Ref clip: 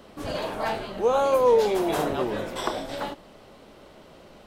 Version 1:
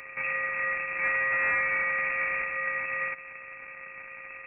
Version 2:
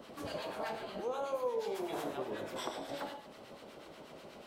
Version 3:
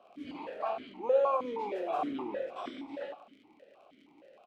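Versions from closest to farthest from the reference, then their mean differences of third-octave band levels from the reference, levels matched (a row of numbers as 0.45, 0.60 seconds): 2, 3, 1; 6.0, 8.5, 13.0 decibels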